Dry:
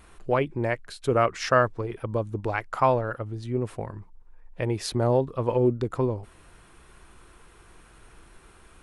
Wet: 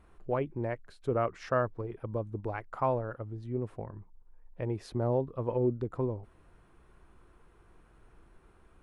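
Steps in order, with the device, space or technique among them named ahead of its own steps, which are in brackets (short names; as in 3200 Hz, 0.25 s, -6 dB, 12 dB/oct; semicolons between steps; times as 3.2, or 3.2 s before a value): through cloth (high shelf 2000 Hz -14.5 dB); gain -6 dB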